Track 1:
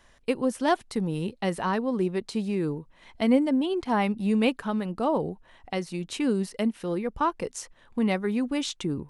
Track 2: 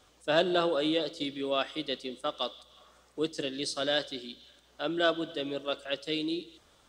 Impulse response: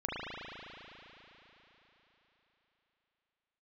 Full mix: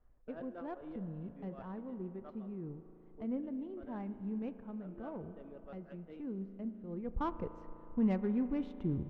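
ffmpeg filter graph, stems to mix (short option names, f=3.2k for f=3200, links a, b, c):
-filter_complex "[0:a]aemphasis=mode=reproduction:type=riaa,volume=-13.5dB,afade=t=in:st=6.86:d=0.33:silence=0.316228,asplit=3[a][b][c];[b]volume=-16dB[d];[1:a]lowpass=f=2.3k:w=0.5412,lowpass=f=2.3k:w=1.3066,volume=-17dB,asplit=2[e][f];[f]volume=-22dB[g];[c]apad=whole_len=303689[h];[e][h]sidechaincompress=threshold=-55dB:ratio=4:attack=16:release=118[i];[2:a]atrim=start_sample=2205[j];[d][g]amix=inputs=2:normalize=0[k];[k][j]afir=irnorm=-1:irlink=0[l];[a][i][l]amix=inputs=3:normalize=0,adynamicsmooth=sensitivity=5.5:basefreq=1.6k"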